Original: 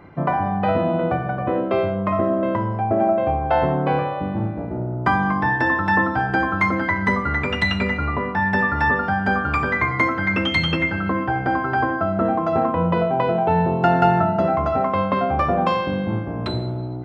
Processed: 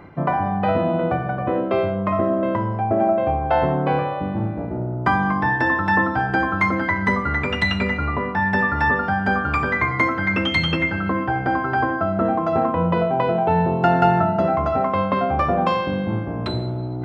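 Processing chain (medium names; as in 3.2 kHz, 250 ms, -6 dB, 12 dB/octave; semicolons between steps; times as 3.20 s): reverse; upward compressor, threshold -23 dBFS; reverse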